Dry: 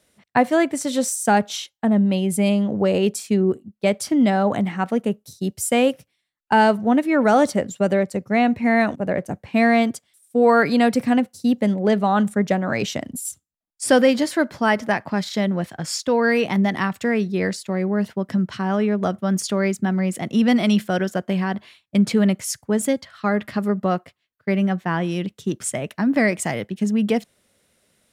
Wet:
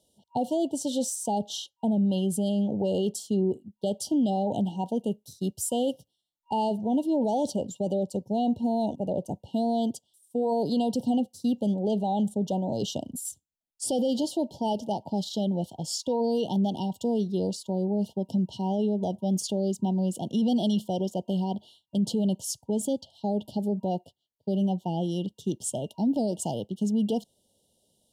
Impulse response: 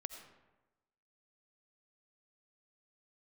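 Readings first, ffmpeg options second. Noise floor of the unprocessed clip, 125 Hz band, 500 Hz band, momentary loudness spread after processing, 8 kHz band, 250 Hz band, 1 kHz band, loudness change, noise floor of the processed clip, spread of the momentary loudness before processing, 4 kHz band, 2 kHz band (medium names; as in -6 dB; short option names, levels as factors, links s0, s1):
-72 dBFS, -6.0 dB, -8.0 dB, 6 LU, -6.0 dB, -7.0 dB, -9.5 dB, -8.0 dB, -79 dBFS, 9 LU, -6.5 dB, under -35 dB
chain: -af "afftfilt=real='re*(1-between(b*sr/4096,950,2800))':imag='im*(1-between(b*sr/4096,950,2800))':win_size=4096:overlap=0.75,alimiter=limit=0.211:level=0:latency=1:release=12,adynamicequalizer=threshold=0.00562:dfrequency=7500:dqfactor=0.7:tfrequency=7500:tqfactor=0.7:attack=5:release=100:ratio=0.375:range=2.5:mode=cutabove:tftype=highshelf,volume=0.562"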